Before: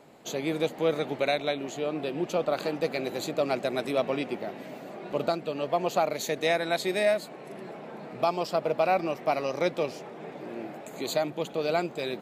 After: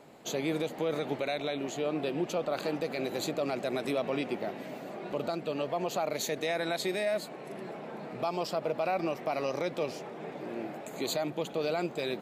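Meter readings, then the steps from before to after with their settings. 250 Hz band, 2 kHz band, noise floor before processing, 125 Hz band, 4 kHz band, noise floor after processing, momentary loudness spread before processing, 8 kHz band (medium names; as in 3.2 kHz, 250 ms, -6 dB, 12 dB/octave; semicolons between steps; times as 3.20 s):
-2.0 dB, -4.5 dB, -44 dBFS, -2.0 dB, -3.0 dB, -44 dBFS, 15 LU, -0.5 dB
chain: peak limiter -22 dBFS, peak gain reduction 8 dB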